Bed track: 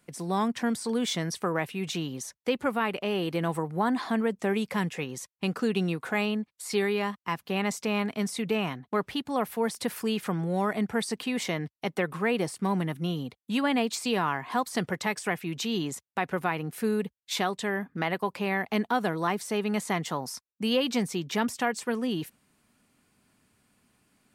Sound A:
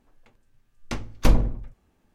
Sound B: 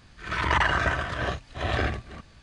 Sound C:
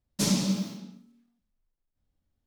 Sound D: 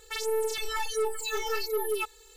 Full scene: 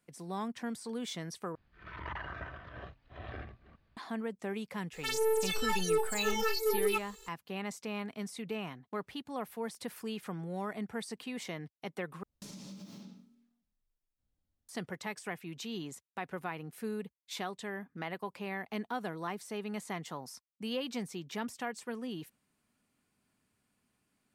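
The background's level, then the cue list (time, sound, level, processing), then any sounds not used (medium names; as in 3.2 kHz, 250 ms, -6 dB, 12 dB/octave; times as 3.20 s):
bed track -10.5 dB
1.55 s: replace with B -17 dB + distance through air 280 m
4.93 s: add D -1 dB
12.23 s: replace with C -6 dB + compression 12:1, threshold -38 dBFS
not used: A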